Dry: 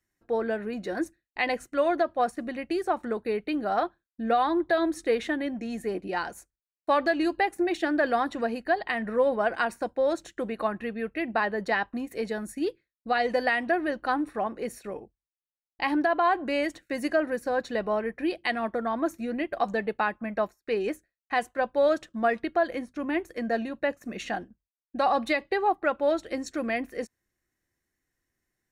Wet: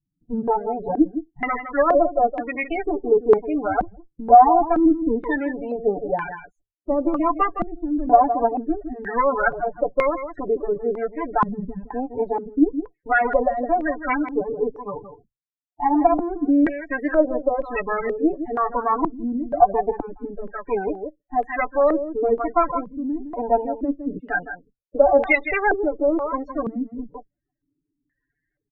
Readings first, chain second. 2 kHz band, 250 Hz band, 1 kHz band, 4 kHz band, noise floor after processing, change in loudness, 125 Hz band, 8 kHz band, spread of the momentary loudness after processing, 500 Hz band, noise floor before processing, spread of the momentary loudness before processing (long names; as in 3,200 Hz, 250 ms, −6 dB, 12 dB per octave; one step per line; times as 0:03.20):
+2.5 dB, +7.0 dB, +8.0 dB, below −15 dB, −83 dBFS, +6.5 dB, can't be measured, below −25 dB, 12 LU, +6.0 dB, below −85 dBFS, 9 LU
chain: lower of the sound and its delayed copy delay 6.9 ms
on a send: single-tap delay 162 ms −10 dB
on the sum: spectral peaks only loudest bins 16
low-pass on a step sequencer 2.1 Hz 210–2,200 Hz
level +5 dB